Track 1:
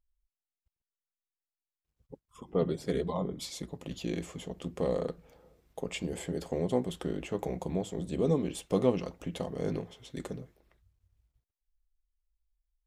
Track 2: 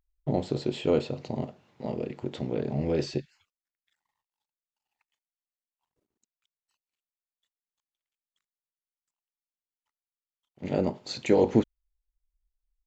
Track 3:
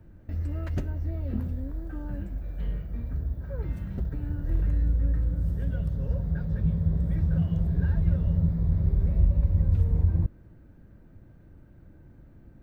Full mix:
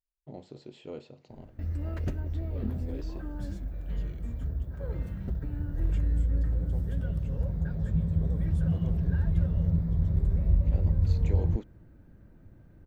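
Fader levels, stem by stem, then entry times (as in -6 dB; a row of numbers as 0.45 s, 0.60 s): -19.5 dB, -17.0 dB, -2.0 dB; 0.00 s, 0.00 s, 1.30 s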